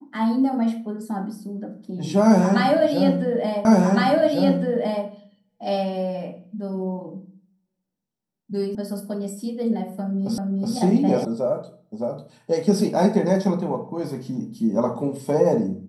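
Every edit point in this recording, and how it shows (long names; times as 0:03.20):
0:03.65: the same again, the last 1.41 s
0:08.75: cut off before it has died away
0:10.38: the same again, the last 0.37 s
0:11.25: cut off before it has died away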